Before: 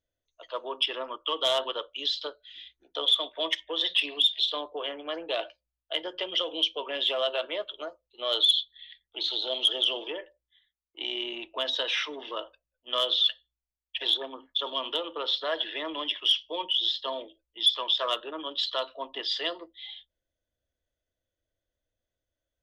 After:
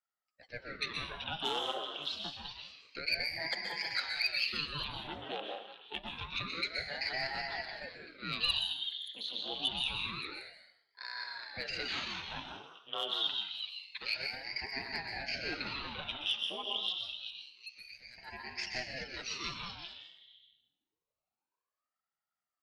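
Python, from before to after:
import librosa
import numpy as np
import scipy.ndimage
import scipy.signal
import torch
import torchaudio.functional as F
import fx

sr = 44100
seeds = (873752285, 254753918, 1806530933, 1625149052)

y = fx.tone_stack(x, sr, knobs='6-0-2', at=(16.92, 18.18))
y = fx.echo_stepped(y, sr, ms=191, hz=1400.0, octaves=1.4, feedback_pct=70, wet_db=-5)
y = fx.rev_plate(y, sr, seeds[0], rt60_s=0.75, hf_ratio=0.85, predelay_ms=110, drr_db=2.5)
y = fx.ring_lfo(y, sr, carrier_hz=730.0, swing_pct=85, hz=0.27)
y = F.gain(torch.from_numpy(y), -7.5).numpy()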